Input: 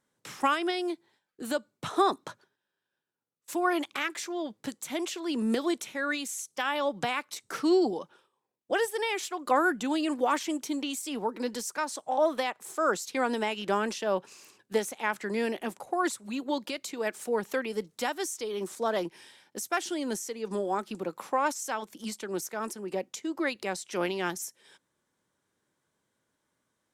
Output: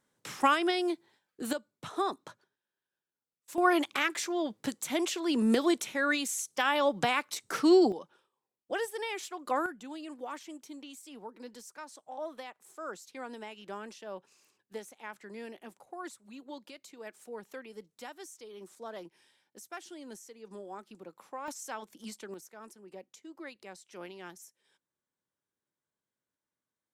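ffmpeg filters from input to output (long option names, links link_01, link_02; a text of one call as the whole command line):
ffmpeg -i in.wav -af "asetnsamples=nb_out_samples=441:pad=0,asendcmd='1.53 volume volume -7dB;3.58 volume volume 2dB;7.92 volume volume -6dB;9.66 volume volume -14dB;21.48 volume volume -7dB;22.34 volume volume -15dB',volume=1dB" out.wav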